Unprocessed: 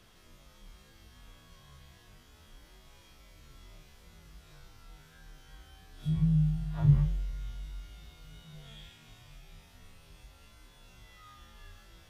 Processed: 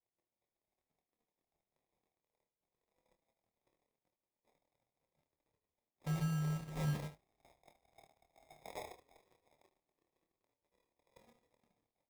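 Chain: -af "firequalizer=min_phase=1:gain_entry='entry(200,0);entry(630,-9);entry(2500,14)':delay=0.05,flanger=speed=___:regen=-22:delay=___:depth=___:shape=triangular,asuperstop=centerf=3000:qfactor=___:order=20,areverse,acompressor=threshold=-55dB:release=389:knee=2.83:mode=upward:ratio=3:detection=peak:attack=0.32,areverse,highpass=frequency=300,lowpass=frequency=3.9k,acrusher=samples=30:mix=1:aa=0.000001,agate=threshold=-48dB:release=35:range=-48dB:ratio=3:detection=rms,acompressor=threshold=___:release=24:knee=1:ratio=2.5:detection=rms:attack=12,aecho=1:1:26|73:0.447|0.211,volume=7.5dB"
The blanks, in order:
0.7, 1.8, 7.6, 3.8, -46dB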